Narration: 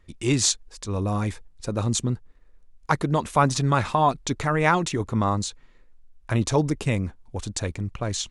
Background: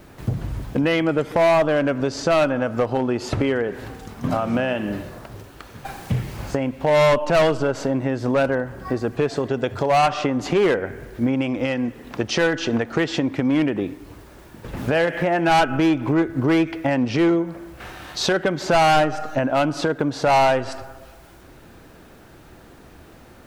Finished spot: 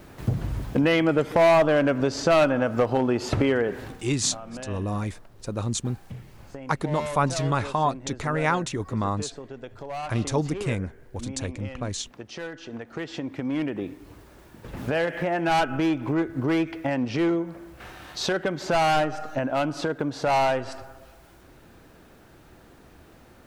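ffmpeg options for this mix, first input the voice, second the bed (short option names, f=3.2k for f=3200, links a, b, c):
-filter_complex "[0:a]adelay=3800,volume=-3.5dB[a];[1:a]volume=10dB,afade=t=out:st=3.72:d=0.43:silence=0.16788,afade=t=in:st=12.67:d=1.39:silence=0.281838[b];[a][b]amix=inputs=2:normalize=0"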